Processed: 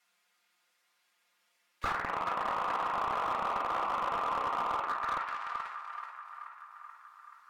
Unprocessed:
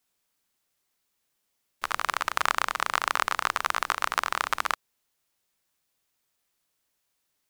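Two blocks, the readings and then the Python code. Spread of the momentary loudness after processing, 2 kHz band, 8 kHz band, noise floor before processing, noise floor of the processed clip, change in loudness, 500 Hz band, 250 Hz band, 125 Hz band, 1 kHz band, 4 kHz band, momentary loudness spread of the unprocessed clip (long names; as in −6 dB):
17 LU, −9.5 dB, below −15 dB, −77 dBFS, −75 dBFS, −5.5 dB, +1.5 dB, +1.5 dB, can't be measured, −2.0 dB, −12.5 dB, 5 LU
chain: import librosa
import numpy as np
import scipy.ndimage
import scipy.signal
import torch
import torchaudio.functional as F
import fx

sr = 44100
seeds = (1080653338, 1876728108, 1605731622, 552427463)

y = fx.reverse_delay_fb(x, sr, ms=190, feedback_pct=56, wet_db=-7)
y = scipy.signal.sosfilt(scipy.signal.butter(6, 190.0, 'highpass', fs=sr, output='sos'), y)
y = fx.env_flanger(y, sr, rest_ms=5.7, full_db=-24.5)
y = fx.peak_eq(y, sr, hz=1800.0, db=14.5, octaves=3.0)
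y = fx.env_lowpass_down(y, sr, base_hz=1000.0, full_db=-21.5)
y = fx.level_steps(y, sr, step_db=11)
y = fx.echo_banded(y, sr, ms=431, feedback_pct=67, hz=1400.0, wet_db=-10.0)
y = fx.room_shoebox(y, sr, seeds[0], volume_m3=480.0, walls='furnished', distance_m=1.8)
y = fx.slew_limit(y, sr, full_power_hz=47.0)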